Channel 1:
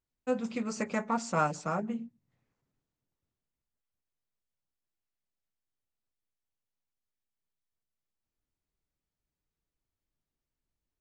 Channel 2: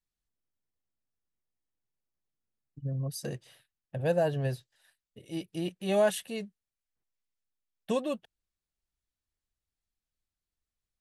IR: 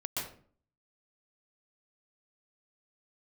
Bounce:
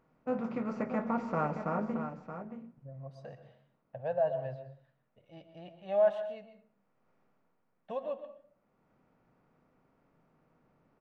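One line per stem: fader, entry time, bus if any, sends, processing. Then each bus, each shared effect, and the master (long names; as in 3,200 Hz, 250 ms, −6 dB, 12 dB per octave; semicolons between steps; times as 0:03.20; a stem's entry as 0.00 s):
+2.0 dB, 0.00 s, send −18.5 dB, echo send −8.5 dB, compressor on every frequency bin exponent 0.6; automatic ducking −17 dB, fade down 0.60 s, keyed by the second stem
−1.0 dB, 0.00 s, send −10.5 dB, no echo send, low shelf with overshoot 480 Hz −9 dB, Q 3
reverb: on, RT60 0.45 s, pre-delay 116 ms
echo: single-tap delay 625 ms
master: flanger 0.19 Hz, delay 6.2 ms, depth 5.1 ms, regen +87%; head-to-tape spacing loss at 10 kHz 42 dB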